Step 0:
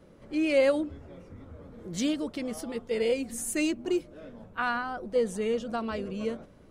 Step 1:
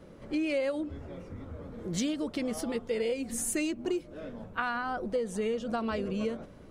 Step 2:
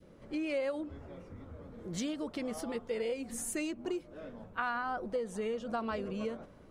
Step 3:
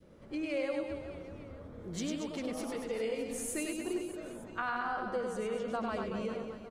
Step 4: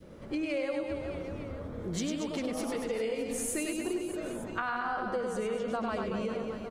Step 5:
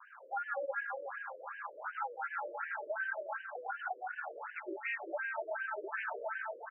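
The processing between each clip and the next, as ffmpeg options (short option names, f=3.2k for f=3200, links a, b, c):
-af "highshelf=f=9.6k:g=-3.5,acompressor=threshold=-32dB:ratio=6,volume=4dB"
-af "adynamicequalizer=threshold=0.00631:dfrequency=1000:dqfactor=0.78:tfrequency=1000:tqfactor=0.78:attack=5:release=100:ratio=0.375:range=2.5:mode=boostabove:tftype=bell,volume=-6dB"
-af "aecho=1:1:100|230|399|618.7|904.3:0.631|0.398|0.251|0.158|0.1,volume=-1.5dB"
-af "acompressor=threshold=-40dB:ratio=2.5,volume=8dB"
-af "aeval=exprs='val(0)*sin(2*PI*1100*n/s)':c=same,afftfilt=real='re*between(b*sr/1024,420*pow(2200/420,0.5+0.5*sin(2*PI*2.7*pts/sr))/1.41,420*pow(2200/420,0.5+0.5*sin(2*PI*2.7*pts/sr))*1.41)':imag='im*between(b*sr/1024,420*pow(2200/420,0.5+0.5*sin(2*PI*2.7*pts/sr))/1.41,420*pow(2200/420,0.5+0.5*sin(2*PI*2.7*pts/sr))*1.41)':win_size=1024:overlap=0.75,volume=2dB"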